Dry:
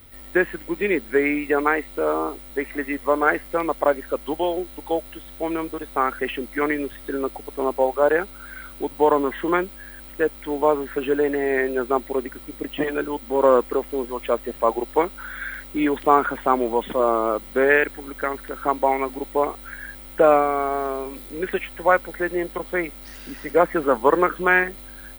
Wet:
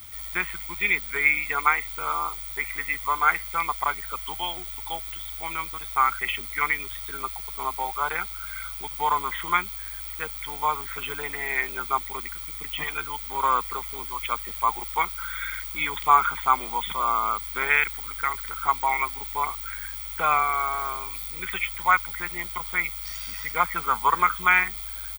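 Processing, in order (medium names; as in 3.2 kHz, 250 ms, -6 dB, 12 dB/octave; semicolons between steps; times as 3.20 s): high-pass 58 Hz 12 dB/octave; amplifier tone stack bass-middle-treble 10-0-10; comb 0.9 ms, depth 83%; bit crusher 9-bit; trim +5.5 dB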